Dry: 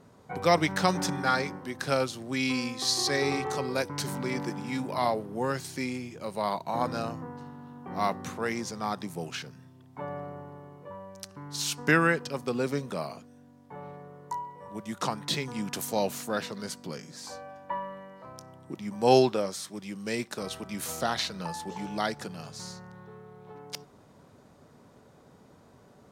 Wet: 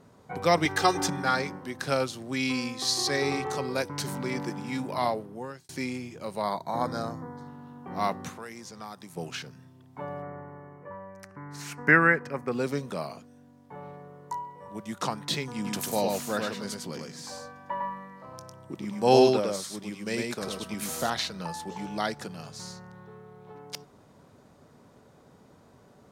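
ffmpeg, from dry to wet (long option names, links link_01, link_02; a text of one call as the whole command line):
ffmpeg -i in.wav -filter_complex "[0:a]asettb=1/sr,asplit=3[link_01][link_02][link_03];[link_01]atrim=end=0.654[link_04];[link_02]atrim=start=0.65:end=1.08,asetpts=PTS-STARTPTS,afade=type=in:duration=0.004:curve=qsin,afade=type=out:start_time=0.426:duration=0.004:curve=qsin,aecho=1:1:2.5:0.98,atrim=end_sample=18963[link_05];[link_03]atrim=start=1.076[link_06];[link_04][link_05]acrossfade=duration=0.004:curve1=hsin:curve2=qsin[link_07];[link_07][link_06]acrossfade=duration=0.004:curve1=qsin:curve2=hsin,asettb=1/sr,asplit=3[link_08][link_09][link_10];[link_08]atrim=end=6.424[link_11];[link_09]atrim=start=6.42:end=7.48,asetpts=PTS-STARTPTS,afade=type=in:duration=0.004:curve=qsin,afade=type=out:start_time=1.056:duration=0.004:curve=qsin,asuperstop=centerf=2700:order=4:qfactor=2.8[link_12];[link_10]atrim=start=7.476[link_13];[link_11][link_12]acrossfade=duration=0.004:curve1=hsin:curve2=qsin[link_14];[link_14][link_13]acrossfade=duration=0.004:curve1=qsin:curve2=hsin,asettb=1/sr,asplit=3[link_15][link_16][link_17];[link_15]atrim=end=8.284[link_18];[link_16]atrim=start=8.28:end=9.17,asetpts=PTS-STARTPTS,afade=type=in:duration=0.004:curve=qsin,afade=type=out:start_time=0.886:duration=0.004:curve=qsin,acrossover=split=980|6900[link_19][link_20][link_21];[link_19]acompressor=threshold=-44dB:ratio=4[link_22];[link_20]acompressor=threshold=-45dB:ratio=4[link_23];[link_21]acompressor=threshold=-53dB:ratio=4[link_24];[link_22][link_23][link_24]amix=inputs=3:normalize=0[link_25];[link_17]atrim=start=9.166[link_26];[link_18][link_25]acrossfade=duration=0.004:curve1=hsin:curve2=qsin[link_27];[link_27][link_26]acrossfade=duration=0.004:curve1=qsin:curve2=hsin,asettb=1/sr,asplit=3[link_28][link_29][link_30];[link_28]atrim=end=10.224[link_31];[link_29]atrim=start=10.22:end=12.52,asetpts=PTS-STARTPTS,afade=type=in:duration=0.004:curve=qsin,afade=type=out:start_time=2.296:duration=0.004:curve=qsin,highshelf=frequency=2600:width_type=q:width=3:gain=-9.5[link_32];[link_30]atrim=start=12.516[link_33];[link_31][link_32]acrossfade=duration=0.004:curve1=hsin:curve2=qsin[link_34];[link_34][link_33]acrossfade=duration=0.004:curve1=qsin:curve2=hsin,asettb=1/sr,asplit=3[link_35][link_36][link_37];[link_35]atrim=end=15.544[link_38];[link_36]atrim=start=15.54:end=21.1,asetpts=PTS-STARTPTS,afade=type=in:duration=0.004:curve=qsin,afade=type=out:start_time=5.556:duration=0.004:curve=qsin,aecho=1:1:103:0.708,atrim=end_sample=245196[link_39];[link_37]atrim=start=21.096[link_40];[link_38][link_39]acrossfade=duration=0.004:curve1=hsin:curve2=qsin[link_41];[link_41][link_40]acrossfade=duration=0.004:curve1=qsin:curve2=hsin,asplit=2[link_42][link_43];[link_42]atrim=end=5.69,asetpts=PTS-STARTPTS,afade=type=out:start_time=5.05:duration=0.64[link_44];[link_43]atrim=start=5.69,asetpts=PTS-STARTPTS,afade=type=in:duration=0.004:curve=hsin[link_45];[link_44][link_45]concat=n=2:v=0:a=1" out.wav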